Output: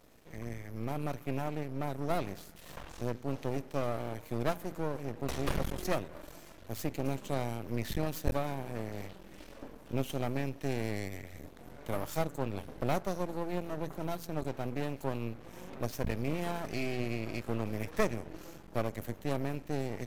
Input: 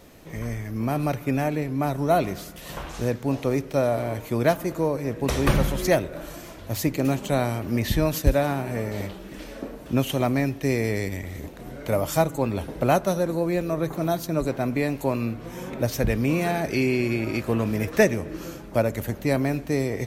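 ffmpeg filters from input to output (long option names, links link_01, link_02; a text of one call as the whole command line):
ffmpeg -i in.wav -af "bandreject=frequency=84.6:width_type=h:width=4,bandreject=frequency=169.2:width_type=h:width=4,bandreject=frequency=253.8:width_type=h:width=4,aeval=exprs='max(val(0),0)':channel_layout=same,volume=-8dB" out.wav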